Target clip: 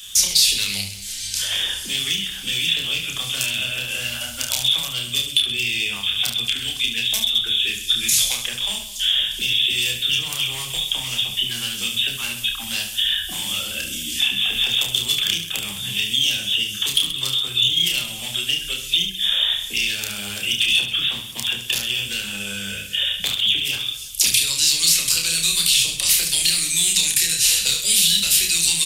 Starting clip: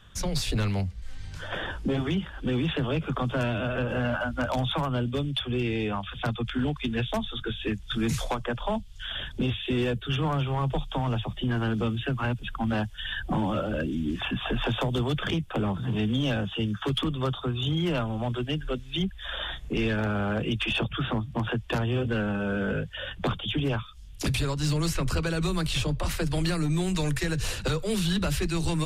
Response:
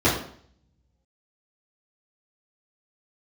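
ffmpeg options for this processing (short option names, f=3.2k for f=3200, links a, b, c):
-filter_complex "[0:a]acrossover=split=130|1400|3800[a][b][c][d];[a]acompressor=threshold=-40dB:ratio=4[e];[b]acompressor=threshold=-39dB:ratio=4[f];[c]acompressor=threshold=-42dB:ratio=4[g];[d]acompressor=threshold=-51dB:ratio=4[h];[e][f][g][h]amix=inputs=4:normalize=0,asplit=2[i][j];[1:a]atrim=start_sample=2205,asetrate=26019,aresample=44100[k];[j][k]afir=irnorm=-1:irlink=0,volume=-34.5dB[l];[i][l]amix=inputs=2:normalize=0,aexciter=amount=7.1:drive=3.7:freq=2.1k,aecho=1:1:30|72|130.8|213.1|328.4:0.631|0.398|0.251|0.158|0.1,crystalizer=i=6.5:c=0,volume=-6dB"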